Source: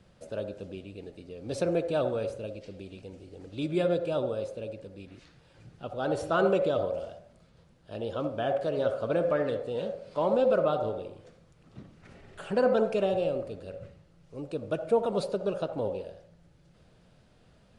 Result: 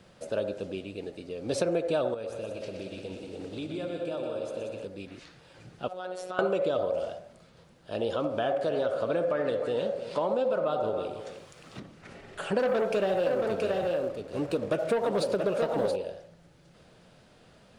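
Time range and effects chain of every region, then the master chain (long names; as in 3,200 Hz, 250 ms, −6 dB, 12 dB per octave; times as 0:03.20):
0:02.14–0:04.85: downward compressor, threshold −39 dBFS + echo machine with several playback heads 61 ms, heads second and third, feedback 61%, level −7 dB
0:05.88–0:06.39: low-shelf EQ 230 Hz −11 dB + downward compressor 3 to 1, threshold −40 dBFS + phases set to zero 183 Hz
0:08.10–0:11.80: downward compressor 1.5 to 1, threshold −33 dBFS + single-tap delay 309 ms −13.5 dB + one half of a high-frequency compander encoder only
0:12.59–0:15.96: leveller curve on the samples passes 2 + flanger 1.5 Hz, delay 3.1 ms, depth 5.6 ms, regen −76% + single-tap delay 675 ms −6.5 dB
whole clip: low-shelf EQ 140 Hz −11.5 dB; downward compressor, threshold −31 dBFS; level +7 dB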